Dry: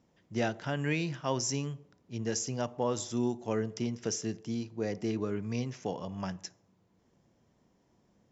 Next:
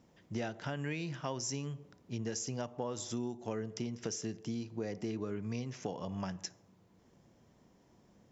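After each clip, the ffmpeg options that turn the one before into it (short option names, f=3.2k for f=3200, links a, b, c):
-af "acompressor=threshold=-40dB:ratio=4,volume=4dB"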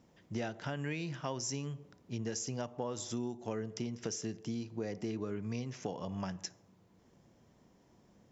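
-af anull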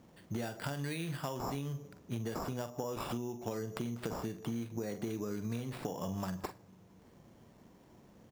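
-filter_complex "[0:a]asplit=2[a][b];[b]adelay=43,volume=-10.5dB[c];[a][c]amix=inputs=2:normalize=0,acrusher=samples=7:mix=1:aa=0.000001,acompressor=threshold=-39dB:ratio=6,volume=5dB"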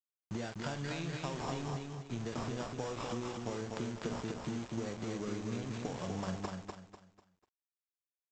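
-af "aresample=16000,aeval=exprs='val(0)*gte(abs(val(0)),0.00794)':c=same,aresample=44100,aecho=1:1:247|494|741|988:0.631|0.208|0.0687|0.0227,volume=-1.5dB"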